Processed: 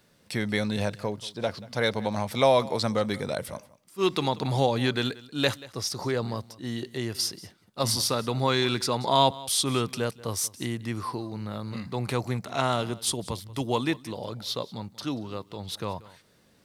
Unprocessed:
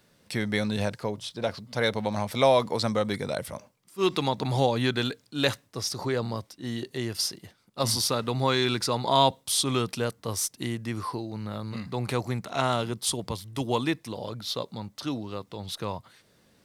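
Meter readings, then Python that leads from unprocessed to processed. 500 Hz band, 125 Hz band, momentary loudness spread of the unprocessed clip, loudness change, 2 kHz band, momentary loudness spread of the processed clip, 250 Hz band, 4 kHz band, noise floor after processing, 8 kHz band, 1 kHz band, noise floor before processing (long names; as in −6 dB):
0.0 dB, 0.0 dB, 11 LU, 0.0 dB, 0.0 dB, 11 LU, 0.0 dB, 0.0 dB, −62 dBFS, 0.0 dB, 0.0 dB, −65 dBFS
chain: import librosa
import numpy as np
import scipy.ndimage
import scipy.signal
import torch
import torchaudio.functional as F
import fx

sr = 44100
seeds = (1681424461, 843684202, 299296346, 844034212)

y = x + 10.0 ** (-20.0 / 20.0) * np.pad(x, (int(184 * sr / 1000.0), 0))[:len(x)]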